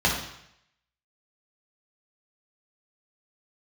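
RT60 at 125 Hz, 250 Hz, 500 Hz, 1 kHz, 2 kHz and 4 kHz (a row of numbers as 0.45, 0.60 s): 0.80, 0.70, 0.75, 0.75, 0.80, 0.75 s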